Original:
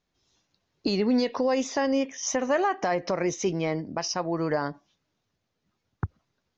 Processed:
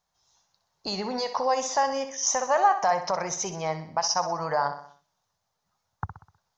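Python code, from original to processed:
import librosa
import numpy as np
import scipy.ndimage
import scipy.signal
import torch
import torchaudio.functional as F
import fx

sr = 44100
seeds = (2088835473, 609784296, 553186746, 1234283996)

p1 = fx.curve_eq(x, sr, hz=(170.0, 300.0, 850.0, 2500.0, 6000.0), db=(0, -11, 14, 0, 11))
p2 = p1 + fx.echo_feedback(p1, sr, ms=63, feedback_pct=48, wet_db=-10.5, dry=0)
y = p2 * librosa.db_to_amplitude(-5.5)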